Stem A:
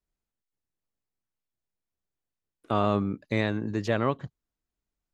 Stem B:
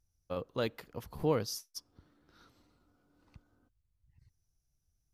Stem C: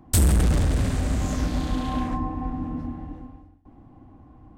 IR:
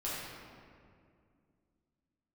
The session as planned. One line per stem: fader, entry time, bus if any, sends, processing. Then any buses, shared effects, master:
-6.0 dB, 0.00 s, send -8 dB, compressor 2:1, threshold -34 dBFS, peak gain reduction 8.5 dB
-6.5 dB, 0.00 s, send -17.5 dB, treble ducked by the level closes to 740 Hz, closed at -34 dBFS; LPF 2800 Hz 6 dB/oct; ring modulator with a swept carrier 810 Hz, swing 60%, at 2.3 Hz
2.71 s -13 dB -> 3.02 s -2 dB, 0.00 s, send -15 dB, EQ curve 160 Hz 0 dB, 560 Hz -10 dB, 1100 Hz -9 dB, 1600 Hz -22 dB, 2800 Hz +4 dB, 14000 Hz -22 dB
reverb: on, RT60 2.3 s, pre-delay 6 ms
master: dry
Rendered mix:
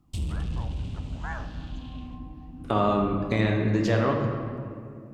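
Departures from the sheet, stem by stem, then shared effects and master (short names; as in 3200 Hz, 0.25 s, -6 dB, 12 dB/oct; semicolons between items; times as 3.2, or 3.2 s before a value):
stem A -6.0 dB -> +3.5 dB; reverb return +7.0 dB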